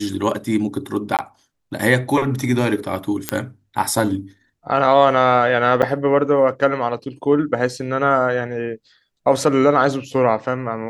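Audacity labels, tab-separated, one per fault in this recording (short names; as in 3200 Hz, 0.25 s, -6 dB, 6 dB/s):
1.170000	1.190000	gap 18 ms
3.290000	3.290000	pop -2 dBFS
5.820000	5.830000	gap 7.6 ms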